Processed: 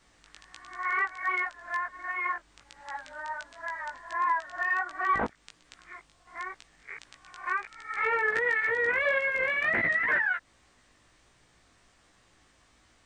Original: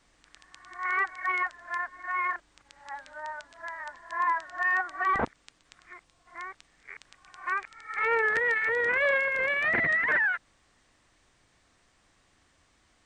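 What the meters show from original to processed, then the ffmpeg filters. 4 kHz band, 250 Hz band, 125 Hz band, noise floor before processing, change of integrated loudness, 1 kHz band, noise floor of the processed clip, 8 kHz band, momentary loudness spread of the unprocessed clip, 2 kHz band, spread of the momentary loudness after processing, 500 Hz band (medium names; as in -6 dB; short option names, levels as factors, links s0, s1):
-0.5 dB, -0.5 dB, -2.0 dB, -67 dBFS, -1.5 dB, -0.5 dB, -64 dBFS, no reading, 17 LU, -1.0 dB, 19 LU, -1.5 dB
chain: -filter_complex "[0:a]asplit=2[s0][s1];[s1]acompressor=threshold=0.0158:ratio=6,volume=0.944[s2];[s0][s2]amix=inputs=2:normalize=0,flanger=delay=16:depth=3:speed=1.4"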